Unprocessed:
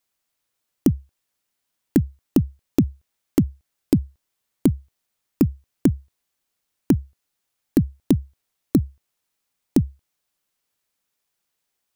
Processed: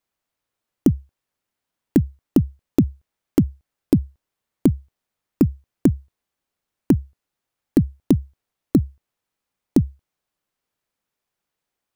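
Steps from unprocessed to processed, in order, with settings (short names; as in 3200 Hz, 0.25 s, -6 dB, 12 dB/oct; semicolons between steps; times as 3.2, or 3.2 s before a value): mismatched tape noise reduction decoder only; gain +1.5 dB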